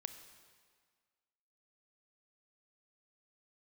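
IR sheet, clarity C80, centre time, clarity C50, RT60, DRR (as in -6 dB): 11.0 dB, 18 ms, 10.0 dB, 1.7 s, 9.0 dB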